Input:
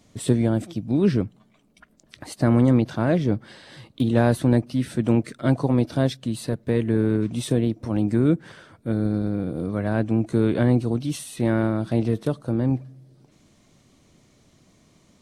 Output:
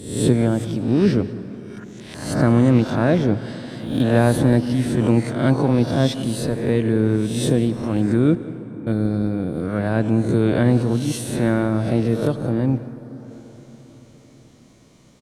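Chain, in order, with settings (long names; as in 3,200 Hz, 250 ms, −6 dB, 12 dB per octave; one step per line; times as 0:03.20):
peak hold with a rise ahead of every peak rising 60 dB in 0.67 s
0:08.35–0:08.87: formant filter u
slap from a distant wall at 31 metres, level −18 dB
on a send at −14.5 dB: convolution reverb RT60 5.3 s, pre-delay 73 ms
on the sum: level +2 dB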